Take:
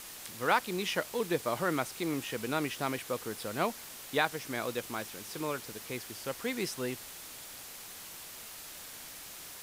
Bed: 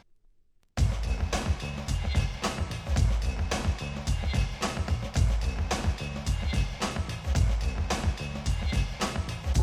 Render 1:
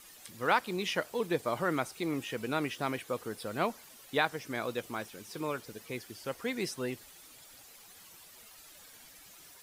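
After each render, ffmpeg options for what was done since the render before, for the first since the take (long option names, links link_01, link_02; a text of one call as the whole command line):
ffmpeg -i in.wav -af "afftdn=noise_reduction=11:noise_floor=-47" out.wav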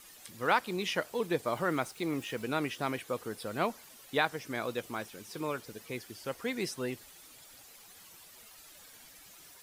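ffmpeg -i in.wav -filter_complex "[0:a]asettb=1/sr,asplit=3[link_01][link_02][link_03];[link_01]atrim=end=1.464[link_04];[link_02]atrim=start=1.46:end=2.43,asetpts=PTS-STARTPTS,afade=type=in:duration=0.004:curve=qsin,afade=type=out:start_time=0.966:duration=0.004:curve=qsin,aeval=exprs='val(0)*gte(abs(val(0)),0.00251)':channel_layout=same[link_05];[link_03]atrim=start=2.426[link_06];[link_04][link_05]acrossfade=duration=0.004:curve1=hsin:curve2=qsin[link_07];[link_07][link_06]acrossfade=duration=0.004:curve1=qsin:curve2=hsin" out.wav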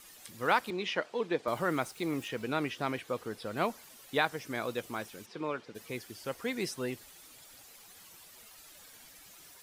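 ffmpeg -i in.wav -filter_complex "[0:a]asettb=1/sr,asplit=3[link_01][link_02][link_03];[link_01]atrim=end=0.704[link_04];[link_02]atrim=start=0.7:end=1.48,asetpts=PTS-STARTPTS,afade=type=in:duration=0.004:curve=qsin,afade=type=out:start_time=0.776:duration=0.004:curve=qsin,highpass=210,lowpass=4400[link_05];[link_03]atrim=start=1.476[link_06];[link_04][link_05]acrossfade=duration=0.004:curve1=hsin:curve2=qsin[link_07];[link_07][link_06]acrossfade=duration=0.004:curve1=qsin:curve2=hsin,asettb=1/sr,asplit=3[link_08][link_09][link_10];[link_08]atrim=end=2.284[link_11];[link_09]atrim=start=2.28:end=3.57,asetpts=PTS-STARTPTS,afade=type=in:duration=0.004:curve=qsin,afade=type=out:start_time=1.286:duration=0.004:curve=qsin,acrossover=split=6000[link_12][link_13];[link_13]acompressor=threshold=-58dB:ratio=4:attack=1:release=60[link_14];[link_12][link_14]amix=inputs=2:normalize=0[link_15];[link_10]atrim=start=3.566[link_16];[link_11][link_15]acrossfade=duration=0.004:curve1=hsin:curve2=qsin[link_17];[link_17][link_16]acrossfade=duration=0.004:curve1=qsin:curve2=hsin,asplit=3[link_18][link_19][link_20];[link_18]afade=type=out:start_time=5.25:duration=0.02[link_21];[link_19]highpass=160,lowpass=3600,afade=type=in:start_time=5.25:duration=0.02,afade=type=out:start_time=5.74:duration=0.02[link_22];[link_20]afade=type=in:start_time=5.74:duration=0.02[link_23];[link_21][link_22][link_23]amix=inputs=3:normalize=0" out.wav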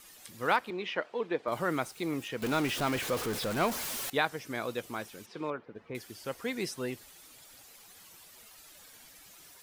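ffmpeg -i in.wav -filter_complex "[0:a]asettb=1/sr,asplit=3[link_01][link_02][link_03];[link_01]atrim=end=0.564[link_04];[link_02]atrim=start=0.56:end=1.52,asetpts=PTS-STARTPTS,afade=type=in:duration=0.004:curve=qsin,afade=type=out:start_time=0.956:duration=0.004:curve=qsin,bass=frequency=250:gain=-4,treble=frequency=4000:gain=-10[link_05];[link_03]atrim=start=1.516[link_06];[link_04][link_05]acrossfade=duration=0.004:curve1=hsin:curve2=qsin[link_07];[link_07][link_06]acrossfade=duration=0.004:curve1=qsin:curve2=hsin,asettb=1/sr,asplit=3[link_08][link_09][link_10];[link_08]atrim=end=2.424[link_11];[link_09]atrim=start=2.42:end=4.1,asetpts=PTS-STARTPTS,afade=type=in:duration=0.004:curve=qsin,afade=type=out:start_time=1.676:duration=0.004:curve=qsin,aeval=exprs='val(0)+0.5*0.0266*sgn(val(0))':channel_layout=same[link_12];[link_10]atrim=start=4.096[link_13];[link_11][link_12]acrossfade=duration=0.004:curve1=hsin:curve2=qsin[link_14];[link_14][link_13]acrossfade=duration=0.004:curve1=qsin:curve2=hsin,asettb=1/sr,asplit=3[link_15][link_16][link_17];[link_15]atrim=end=5.504[link_18];[link_16]atrim=start=5.5:end=5.95,asetpts=PTS-STARTPTS,afade=type=in:duration=0.004:curve=qsin,afade=type=out:start_time=0.446:duration=0.004:curve=qsin,lowpass=1600[link_19];[link_17]atrim=start=5.946[link_20];[link_18][link_19]acrossfade=duration=0.004:curve1=hsin:curve2=qsin[link_21];[link_21][link_20]acrossfade=duration=0.004:curve1=qsin:curve2=hsin" out.wav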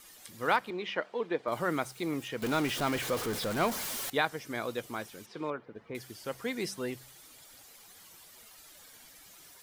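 ffmpeg -i in.wav -af "bandreject=frequency=2600:width=24,bandreject=frequency=64.82:width_type=h:width=4,bandreject=frequency=129.64:width_type=h:width=4,bandreject=frequency=194.46:width_type=h:width=4" out.wav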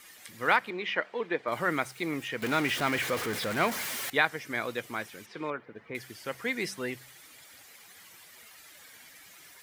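ffmpeg -i in.wav -af "highpass=64,equalizer=frequency=2000:width_type=o:width=0.97:gain=8.5" out.wav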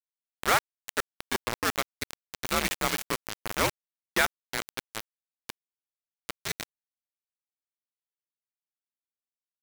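ffmpeg -i in.wav -af "afreqshift=-94,acrusher=bits=3:mix=0:aa=0.000001" out.wav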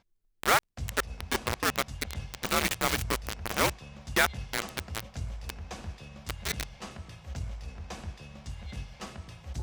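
ffmpeg -i in.wav -i bed.wav -filter_complex "[1:a]volume=-12dB[link_01];[0:a][link_01]amix=inputs=2:normalize=0" out.wav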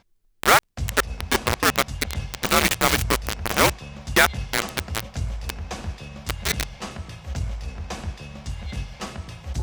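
ffmpeg -i in.wav -af "volume=8.5dB,alimiter=limit=-3dB:level=0:latency=1" out.wav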